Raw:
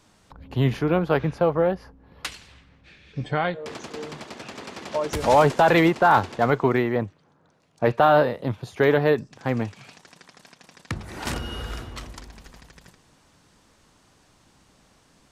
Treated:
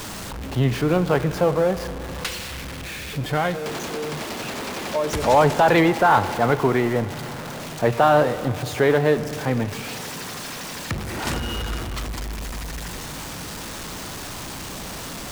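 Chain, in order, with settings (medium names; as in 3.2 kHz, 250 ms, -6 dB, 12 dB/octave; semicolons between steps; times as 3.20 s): jump at every zero crossing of -28 dBFS; spring tank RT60 3.6 s, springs 33/39 ms, chirp 60 ms, DRR 12.5 dB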